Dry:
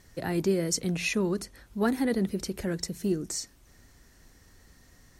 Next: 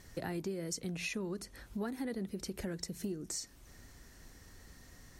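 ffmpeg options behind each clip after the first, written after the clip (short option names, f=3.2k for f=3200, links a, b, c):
-af "acompressor=threshold=-38dB:ratio=5,volume=1dB"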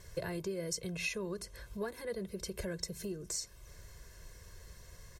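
-af "aecho=1:1:1.9:0.97,volume=-1dB"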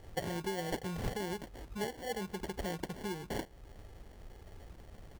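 -af "acrusher=samples=35:mix=1:aa=0.000001,volume=1dB"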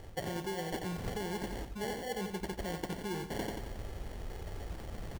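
-af "aecho=1:1:90|180|270|360|450:0.355|0.17|0.0817|0.0392|0.0188,areverse,acompressor=threshold=-45dB:ratio=6,areverse,volume=10dB"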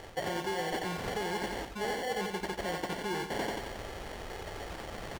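-filter_complex "[0:a]asplit=2[a][b];[b]highpass=f=720:p=1,volume=16dB,asoftclip=type=tanh:threshold=-22dB[c];[a][c]amix=inputs=2:normalize=0,lowpass=f=5.3k:p=1,volume=-6dB"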